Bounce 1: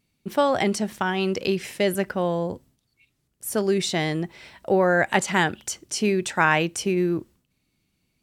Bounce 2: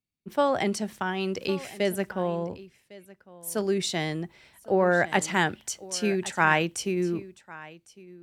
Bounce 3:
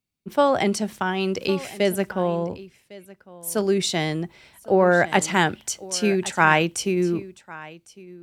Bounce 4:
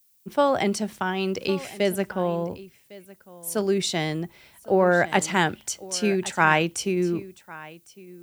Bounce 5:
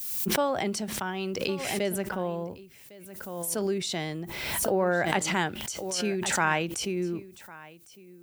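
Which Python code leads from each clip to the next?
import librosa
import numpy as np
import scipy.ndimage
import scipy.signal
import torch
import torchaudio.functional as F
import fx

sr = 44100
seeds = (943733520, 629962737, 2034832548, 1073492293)

y1 = x + 10.0 ** (-15.0 / 20.0) * np.pad(x, (int(1105 * sr / 1000.0), 0))[:len(x)]
y1 = fx.band_widen(y1, sr, depth_pct=40)
y1 = F.gain(torch.from_numpy(y1), -4.0).numpy()
y2 = fx.peak_eq(y1, sr, hz=1800.0, db=-3.5, octaves=0.2)
y2 = F.gain(torch.from_numpy(y2), 5.0).numpy()
y3 = fx.dmg_noise_colour(y2, sr, seeds[0], colour='violet', level_db=-60.0)
y3 = F.gain(torch.from_numpy(y3), -2.0).numpy()
y4 = fx.pre_swell(y3, sr, db_per_s=34.0)
y4 = F.gain(torch.from_numpy(y4), -6.5).numpy()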